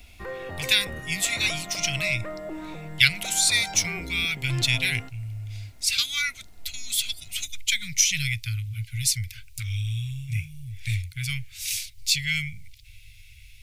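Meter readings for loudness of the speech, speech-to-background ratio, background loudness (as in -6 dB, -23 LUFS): -25.0 LUFS, 12.0 dB, -37.0 LUFS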